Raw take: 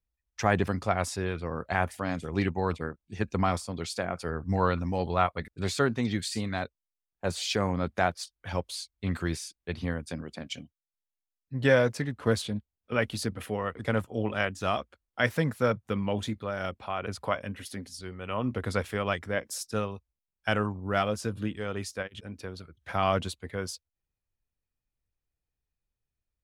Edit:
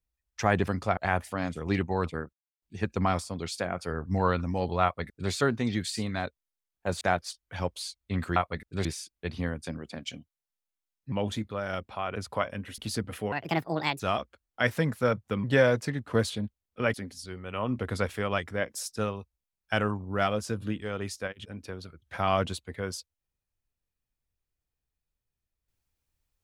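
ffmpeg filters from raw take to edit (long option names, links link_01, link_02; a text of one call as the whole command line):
ffmpeg -i in.wav -filter_complex "[0:a]asplit=12[link_01][link_02][link_03][link_04][link_05][link_06][link_07][link_08][link_09][link_10][link_11][link_12];[link_01]atrim=end=0.972[link_13];[link_02]atrim=start=1.638:end=3,asetpts=PTS-STARTPTS,afade=type=out:start_time=1.358:duration=0.004:curve=hsin,apad=pad_dur=0.29[link_14];[link_03]atrim=start=3:end=7.392,asetpts=PTS-STARTPTS,afade=type=in:duration=0.004:curve=hsin[link_15];[link_04]atrim=start=7.938:end=9.292[link_16];[link_05]atrim=start=5.208:end=5.702[link_17];[link_06]atrim=start=9.288:end=11.562[link_18];[link_07]atrim=start=16.028:end=17.692[link_19];[link_08]atrim=start=13.058:end=13.604[link_20];[link_09]atrim=start=13.6:end=14.59,asetpts=PTS-STARTPTS,asetrate=64386,aresample=44100,atrim=end_sample=29903,asetpts=PTS-STARTPTS[link_21];[link_10]atrim=start=14.586:end=16.032[link_22];[link_11]atrim=start=11.558:end=13.062[link_23];[link_12]atrim=start=17.688[link_24];[link_14][link_15]concat=n=2:v=0:a=1[link_25];[link_13][link_25]acrossfade=duration=0.004:curve1=hsin:curve2=hsin[link_26];[link_26][link_16]acrossfade=duration=0.004:curve1=hsin:curve2=hsin[link_27];[link_27][link_17]acrossfade=duration=0.004:curve1=hsin:curve2=hsin[link_28];[link_28][link_18]acrossfade=duration=0.004:curve1=hsin:curve2=hsin[link_29];[link_29][link_19]acrossfade=duration=0.004:curve1=hsin:curve2=hsin[link_30];[link_30][link_20]acrossfade=duration=0.004:curve1=hsin:curve2=hsin[link_31];[link_31][link_21]acrossfade=duration=0.004:curve1=hsin:curve2=hsin[link_32];[link_32][link_22]acrossfade=duration=0.004:curve1=hsin:curve2=hsin[link_33];[link_33][link_23]acrossfade=duration=0.004:curve1=hsin:curve2=hsin[link_34];[link_34][link_24]acrossfade=duration=0.004:curve1=hsin:curve2=hsin" out.wav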